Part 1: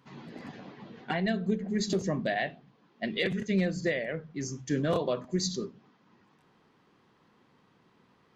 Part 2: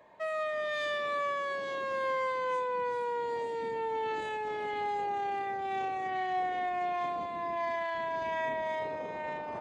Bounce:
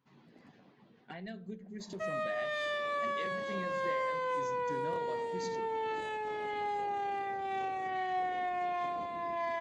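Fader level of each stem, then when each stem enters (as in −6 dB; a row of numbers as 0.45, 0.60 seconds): −15.0, −2.0 decibels; 0.00, 1.80 seconds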